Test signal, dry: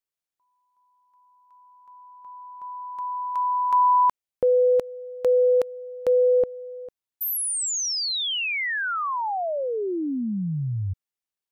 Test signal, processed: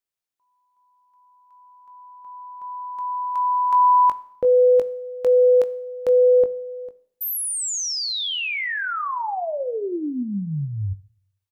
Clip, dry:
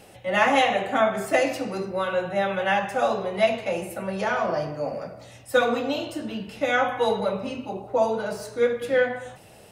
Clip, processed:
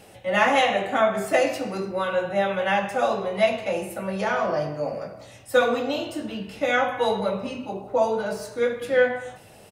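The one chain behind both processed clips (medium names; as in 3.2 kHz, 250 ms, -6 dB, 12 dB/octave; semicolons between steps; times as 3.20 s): doubling 20 ms -10 dB; Schroeder reverb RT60 0.67 s, combs from 28 ms, DRR 17 dB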